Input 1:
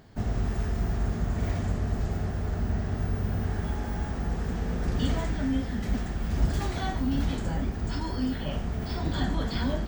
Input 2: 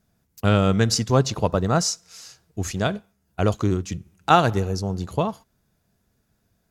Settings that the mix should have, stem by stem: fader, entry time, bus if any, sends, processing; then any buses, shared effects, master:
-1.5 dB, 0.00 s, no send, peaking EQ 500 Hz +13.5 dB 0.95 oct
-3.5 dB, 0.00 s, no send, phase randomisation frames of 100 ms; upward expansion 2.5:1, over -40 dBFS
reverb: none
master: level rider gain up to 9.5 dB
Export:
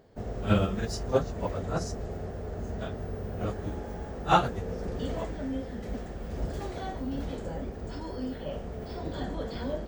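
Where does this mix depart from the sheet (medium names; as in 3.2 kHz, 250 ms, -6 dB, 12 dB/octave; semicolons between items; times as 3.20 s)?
stem 1 -1.5 dB -> -9.0 dB; master: missing level rider gain up to 9.5 dB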